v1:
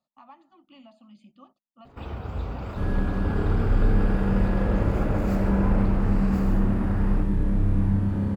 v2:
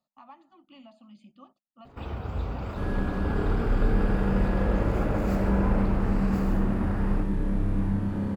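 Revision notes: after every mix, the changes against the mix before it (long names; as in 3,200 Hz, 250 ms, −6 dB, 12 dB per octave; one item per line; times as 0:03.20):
second sound: add parametric band 69 Hz −7.5 dB 2.2 octaves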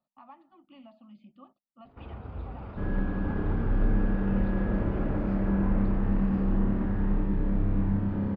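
first sound −7.0 dB
master: add high-frequency loss of the air 280 metres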